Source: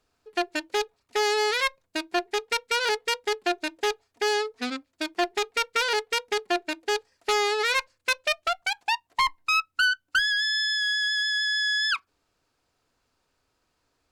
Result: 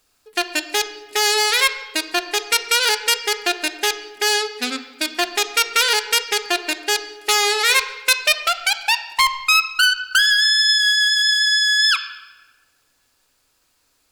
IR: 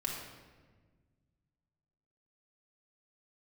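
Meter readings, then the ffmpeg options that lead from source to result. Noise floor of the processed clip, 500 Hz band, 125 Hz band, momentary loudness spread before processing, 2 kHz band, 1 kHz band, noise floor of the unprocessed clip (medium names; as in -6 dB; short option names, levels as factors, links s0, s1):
-65 dBFS, +1.5 dB, no reading, 7 LU, +7.5 dB, +5.0 dB, -75 dBFS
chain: -filter_complex "[0:a]crystalizer=i=6.5:c=0,asplit=2[s0][s1];[s1]lowpass=f=6900:w=0.5412,lowpass=f=6900:w=1.3066[s2];[1:a]atrim=start_sample=2205,highshelf=f=5700:g=-6.5[s3];[s2][s3]afir=irnorm=-1:irlink=0,volume=0.398[s4];[s0][s4]amix=inputs=2:normalize=0,volume=0.891"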